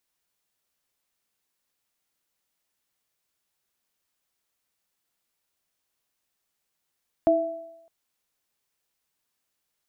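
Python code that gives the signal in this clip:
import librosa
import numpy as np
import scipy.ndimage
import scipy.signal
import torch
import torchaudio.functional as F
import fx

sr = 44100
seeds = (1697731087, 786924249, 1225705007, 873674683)

y = fx.additive_free(sr, length_s=0.61, hz=322.0, level_db=-20, upper_db=(5,), decay_s=0.66, upper_decays_s=(0.9,), upper_hz=(664.0,))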